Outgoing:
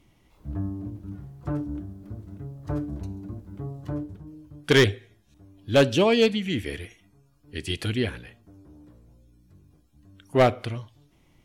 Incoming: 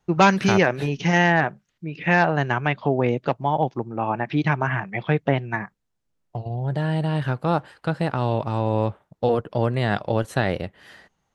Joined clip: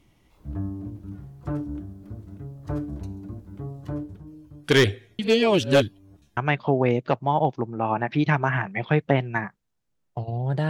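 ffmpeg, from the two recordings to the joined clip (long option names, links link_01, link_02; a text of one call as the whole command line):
ffmpeg -i cue0.wav -i cue1.wav -filter_complex "[0:a]apad=whole_dur=10.69,atrim=end=10.69,asplit=2[link_01][link_02];[link_01]atrim=end=5.192[link_03];[link_02]atrim=start=5.188:end=6.372,asetpts=PTS-STARTPTS,areverse[link_04];[1:a]atrim=start=2.548:end=6.87[link_05];[link_03][link_04]acrossfade=duration=0.004:curve1=hsin:curve2=hsin[link_06];[link_06][link_05]acrossfade=duration=0.004:curve1=hsin:curve2=hsin" out.wav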